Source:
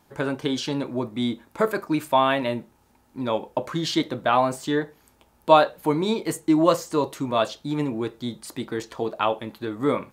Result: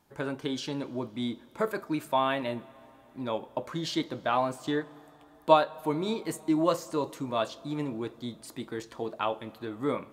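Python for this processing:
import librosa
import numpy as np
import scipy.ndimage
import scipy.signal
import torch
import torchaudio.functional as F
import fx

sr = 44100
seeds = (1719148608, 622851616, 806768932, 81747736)

y = fx.transient(x, sr, attack_db=3, sustain_db=-4, at=(4.49, 5.74))
y = fx.rev_plate(y, sr, seeds[0], rt60_s=4.2, hf_ratio=0.75, predelay_ms=0, drr_db=20.0)
y = y * librosa.db_to_amplitude(-7.0)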